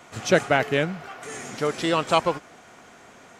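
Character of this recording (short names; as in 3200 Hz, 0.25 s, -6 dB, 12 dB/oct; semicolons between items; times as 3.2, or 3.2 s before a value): noise floor -50 dBFS; spectral tilt -4.5 dB/oct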